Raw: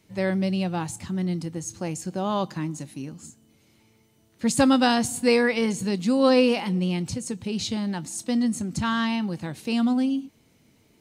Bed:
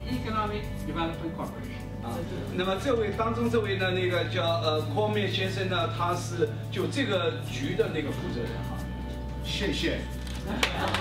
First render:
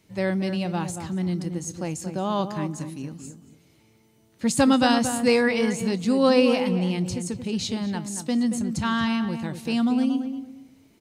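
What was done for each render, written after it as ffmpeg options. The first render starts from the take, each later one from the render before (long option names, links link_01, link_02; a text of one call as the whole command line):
ffmpeg -i in.wav -filter_complex "[0:a]asplit=2[link_01][link_02];[link_02]adelay=229,lowpass=frequency=1500:poles=1,volume=-7.5dB,asplit=2[link_03][link_04];[link_04]adelay=229,lowpass=frequency=1500:poles=1,volume=0.24,asplit=2[link_05][link_06];[link_06]adelay=229,lowpass=frequency=1500:poles=1,volume=0.24[link_07];[link_01][link_03][link_05][link_07]amix=inputs=4:normalize=0" out.wav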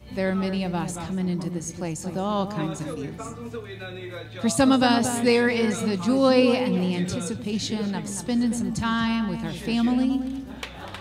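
ffmpeg -i in.wav -i bed.wav -filter_complex "[1:a]volume=-9.5dB[link_01];[0:a][link_01]amix=inputs=2:normalize=0" out.wav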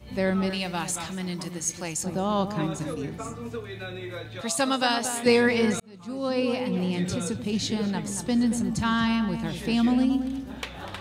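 ffmpeg -i in.wav -filter_complex "[0:a]asettb=1/sr,asplit=3[link_01][link_02][link_03];[link_01]atrim=end=0.504[link_04];[link_02]atrim=start=0.5:end=2.03,asetpts=PTS-STARTPTS,afade=type=in:duration=0.004:curve=qsin,afade=type=out:start_time=1.526:duration=0.004:curve=qsin,tiltshelf=frequency=910:gain=-7[link_05];[link_03]atrim=start=2.026[link_06];[link_04][link_05]acrossfade=duration=0.004:curve1=hsin:curve2=qsin[link_07];[link_07][link_06]acrossfade=duration=0.004:curve1=qsin:curve2=hsin,asettb=1/sr,asplit=3[link_08][link_09][link_10];[link_08]atrim=end=4.414[link_11];[link_09]atrim=start=4.41:end=5.26,asetpts=PTS-STARTPTS,afade=type=in:duration=0.004:curve=qsin,afade=type=out:start_time=0.846:duration=0.004:curve=qsin,highpass=frequency=790:poles=1[link_12];[link_10]atrim=start=5.256[link_13];[link_11][link_12]acrossfade=duration=0.004:curve1=hsin:curve2=qsin[link_14];[link_14][link_13]acrossfade=duration=0.004:curve1=qsin:curve2=hsin,asplit=2[link_15][link_16];[link_15]atrim=end=5.8,asetpts=PTS-STARTPTS,afade=type=out:start_time=5.796:duration=0.004:curve=hsin[link_17];[link_16]atrim=start=5.8,asetpts=PTS-STARTPTS,afade=type=in:duration=1.42[link_18];[link_17][link_18]concat=n=2:v=0:a=1" out.wav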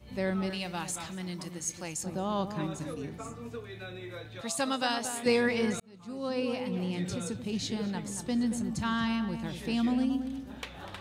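ffmpeg -i in.wav -af "volume=-6dB" out.wav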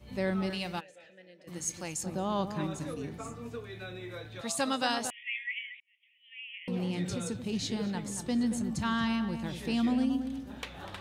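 ffmpeg -i in.wav -filter_complex "[0:a]asplit=3[link_01][link_02][link_03];[link_01]afade=type=out:start_time=0.79:duration=0.02[link_04];[link_02]asplit=3[link_05][link_06][link_07];[link_05]bandpass=frequency=530:width_type=q:width=8,volume=0dB[link_08];[link_06]bandpass=frequency=1840:width_type=q:width=8,volume=-6dB[link_09];[link_07]bandpass=frequency=2480:width_type=q:width=8,volume=-9dB[link_10];[link_08][link_09][link_10]amix=inputs=3:normalize=0,afade=type=in:start_time=0.79:duration=0.02,afade=type=out:start_time=1.47:duration=0.02[link_11];[link_03]afade=type=in:start_time=1.47:duration=0.02[link_12];[link_04][link_11][link_12]amix=inputs=3:normalize=0,asettb=1/sr,asplit=3[link_13][link_14][link_15];[link_13]atrim=end=5.104[link_16];[link_14]atrim=start=5.1:end=6.68,asetpts=PTS-STARTPTS,afade=type=in:duration=0.004:curve=qsin,afade=type=out:start_time=1.576:duration=0.004:curve=qsin,asuperpass=centerf=2500:order=20:qfactor=1.7[link_17];[link_15]atrim=start=6.676[link_18];[link_16][link_17]acrossfade=duration=0.004:curve1=hsin:curve2=qsin[link_19];[link_19][link_18]acrossfade=duration=0.004:curve1=qsin:curve2=hsin" out.wav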